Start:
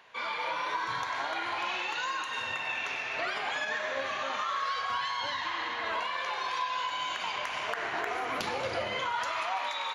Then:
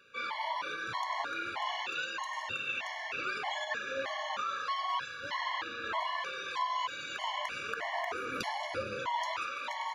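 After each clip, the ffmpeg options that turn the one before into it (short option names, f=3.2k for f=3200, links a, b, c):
-af "afftfilt=real='re*gt(sin(2*PI*1.6*pts/sr)*(1-2*mod(floor(b*sr/1024/570),2)),0)':imag='im*gt(sin(2*PI*1.6*pts/sr)*(1-2*mod(floor(b*sr/1024/570),2)),0)':win_size=1024:overlap=0.75"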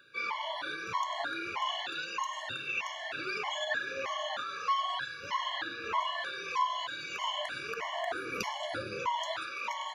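-af "afftfilt=real='re*pow(10,12/40*sin(2*PI*(0.81*log(max(b,1)*sr/1024/100)/log(2)-(1.6)*(pts-256)/sr)))':imag='im*pow(10,12/40*sin(2*PI*(0.81*log(max(b,1)*sr/1024/100)/log(2)-(1.6)*(pts-256)/sr)))':win_size=1024:overlap=0.75"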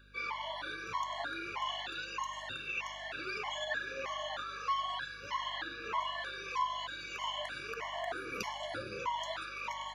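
-af "aeval=exprs='val(0)+0.00141*(sin(2*PI*50*n/s)+sin(2*PI*2*50*n/s)/2+sin(2*PI*3*50*n/s)/3+sin(2*PI*4*50*n/s)/4+sin(2*PI*5*50*n/s)/5)':c=same,volume=-3.5dB"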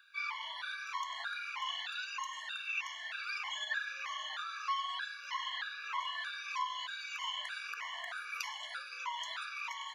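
-af "highpass=f=1.1k:w=0.5412,highpass=f=1.1k:w=1.3066,volume=1dB"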